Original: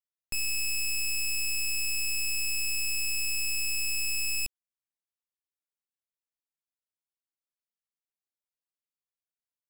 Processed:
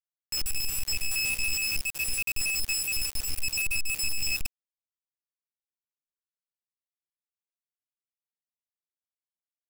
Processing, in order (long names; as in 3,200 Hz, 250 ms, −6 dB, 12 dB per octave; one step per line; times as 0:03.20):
time-frequency cells dropped at random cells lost 61%
high-shelf EQ 6,800 Hz −6 dB
single-tap delay 81 ms −15.5 dB
log-companded quantiser 2 bits